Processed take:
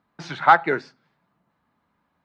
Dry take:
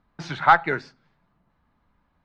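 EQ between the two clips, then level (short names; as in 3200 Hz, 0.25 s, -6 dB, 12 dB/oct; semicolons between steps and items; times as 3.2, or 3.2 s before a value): Bessel high-pass 160 Hz, order 2; dynamic EQ 380 Hz, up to +5 dB, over -31 dBFS, Q 0.73; 0.0 dB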